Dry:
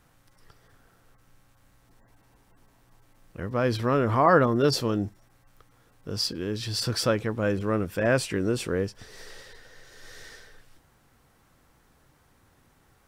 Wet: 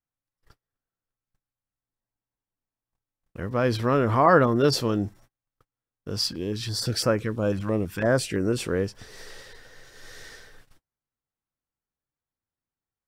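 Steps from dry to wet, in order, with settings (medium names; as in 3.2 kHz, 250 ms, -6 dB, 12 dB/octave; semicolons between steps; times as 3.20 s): gate -51 dBFS, range -35 dB; 6.19–8.58 s: step-sequenced notch 6 Hz 430–3500 Hz; trim +1.5 dB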